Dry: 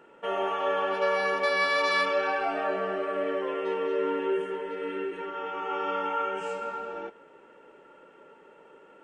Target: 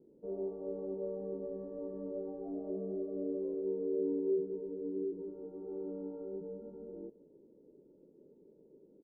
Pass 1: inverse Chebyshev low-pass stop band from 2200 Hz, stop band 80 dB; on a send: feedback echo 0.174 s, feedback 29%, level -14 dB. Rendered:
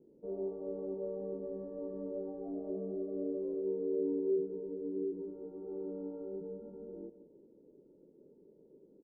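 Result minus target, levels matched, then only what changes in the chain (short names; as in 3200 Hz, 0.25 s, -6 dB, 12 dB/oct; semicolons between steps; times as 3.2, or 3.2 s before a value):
echo-to-direct +10.5 dB
change: feedback echo 0.174 s, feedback 29%, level -24.5 dB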